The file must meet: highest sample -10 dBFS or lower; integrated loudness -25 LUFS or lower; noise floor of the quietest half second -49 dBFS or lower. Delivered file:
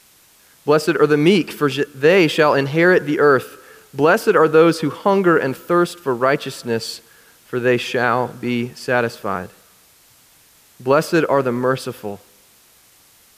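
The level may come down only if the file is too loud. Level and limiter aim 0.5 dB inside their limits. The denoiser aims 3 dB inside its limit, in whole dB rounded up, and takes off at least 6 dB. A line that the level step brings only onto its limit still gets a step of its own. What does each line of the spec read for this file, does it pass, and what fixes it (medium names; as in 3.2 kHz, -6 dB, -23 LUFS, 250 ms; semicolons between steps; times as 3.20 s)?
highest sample -3.0 dBFS: fail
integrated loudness -17.0 LUFS: fail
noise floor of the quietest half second -52 dBFS: pass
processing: trim -8.5 dB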